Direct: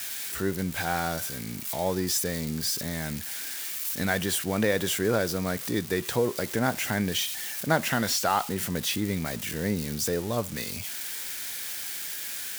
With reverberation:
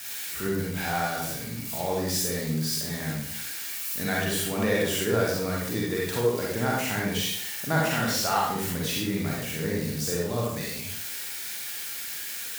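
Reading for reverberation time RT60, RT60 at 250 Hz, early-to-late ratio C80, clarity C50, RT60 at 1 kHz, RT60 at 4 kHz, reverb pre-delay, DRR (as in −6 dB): 0.65 s, 0.65 s, 4.0 dB, −1.0 dB, 0.60 s, 0.50 s, 38 ms, −4.5 dB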